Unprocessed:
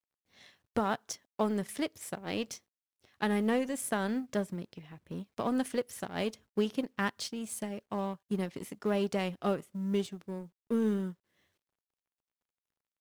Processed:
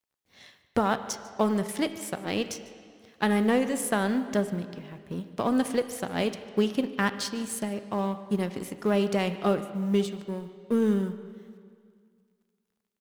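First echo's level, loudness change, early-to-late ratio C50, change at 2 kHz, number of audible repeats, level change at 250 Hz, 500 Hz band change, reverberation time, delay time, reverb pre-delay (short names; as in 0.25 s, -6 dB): -20.0 dB, +6.0 dB, 11.5 dB, +6.0 dB, 1, +6.0 dB, +6.0 dB, 2.1 s, 0.148 s, 7 ms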